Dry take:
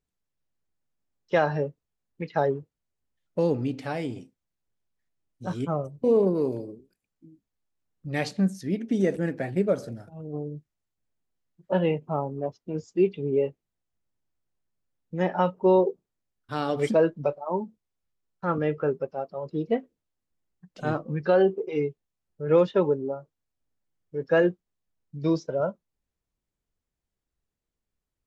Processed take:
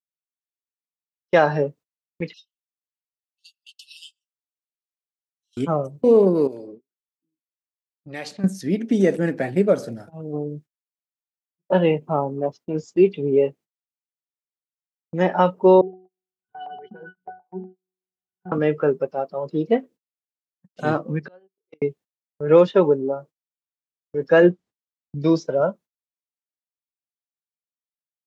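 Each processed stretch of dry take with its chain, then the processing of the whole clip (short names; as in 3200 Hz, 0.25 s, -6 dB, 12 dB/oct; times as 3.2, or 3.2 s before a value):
2.33–5.57 brick-wall FIR high-pass 2600 Hz + comb 5.4 ms, depth 76%
6.47–8.44 low-pass opened by the level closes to 1100 Hz, open at -25.5 dBFS + low shelf 240 Hz -10 dB + compressor 2:1, threshold -41 dBFS
15.81–18.52 octave resonator F#, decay 0.46 s + upward compressor, threshold -51 dBFS + LFO low-pass saw up 8.2 Hz 740–7000 Hz
21.19–21.82 flipped gate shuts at -25 dBFS, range -32 dB + compressor 4:1, threshold -42 dBFS
24.42–25.22 LPF 7100 Hz + low shelf 310 Hz +5.5 dB
whole clip: HPF 150 Hz 12 dB/oct; gate -48 dBFS, range -32 dB; gain +6.5 dB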